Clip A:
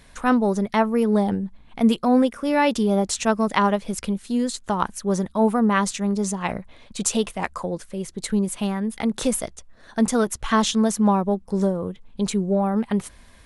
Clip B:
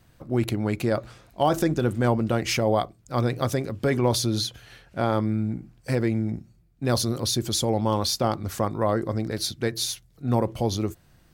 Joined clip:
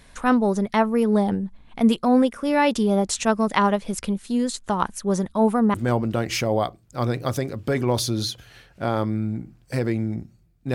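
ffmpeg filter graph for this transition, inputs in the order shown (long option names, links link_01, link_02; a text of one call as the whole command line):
ffmpeg -i cue0.wav -i cue1.wav -filter_complex "[0:a]apad=whole_dur=10.74,atrim=end=10.74,atrim=end=5.742[link_01];[1:a]atrim=start=1.898:end=6.9[link_02];[link_01][link_02]acrossfade=duration=0.004:curve1=hsin:curve2=hsin" out.wav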